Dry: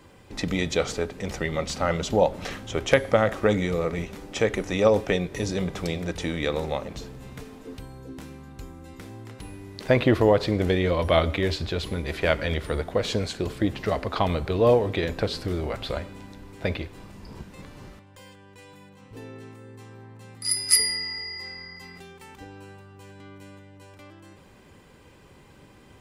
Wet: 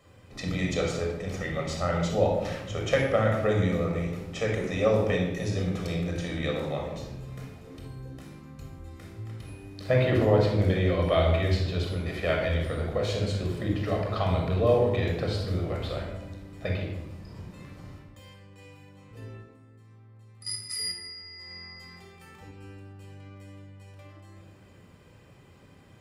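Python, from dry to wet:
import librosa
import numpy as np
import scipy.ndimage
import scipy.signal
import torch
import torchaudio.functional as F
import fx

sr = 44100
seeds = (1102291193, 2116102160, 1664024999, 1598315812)

y = fx.highpass(x, sr, hz=57.0, slope=6)
y = fx.level_steps(y, sr, step_db=14, at=(19.21, 21.51))
y = fx.room_shoebox(y, sr, seeds[0], volume_m3=3600.0, walls='furnished', distance_m=6.2)
y = y * 10.0 ** (-9.0 / 20.0)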